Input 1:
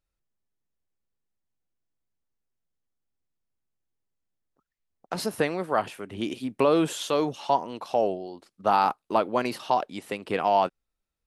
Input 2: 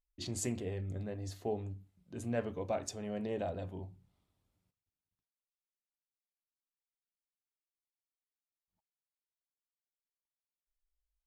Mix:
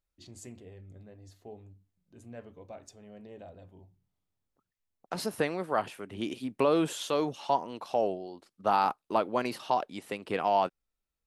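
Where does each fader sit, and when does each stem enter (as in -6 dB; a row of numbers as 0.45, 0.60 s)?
-4.0, -10.5 dB; 0.00, 0.00 s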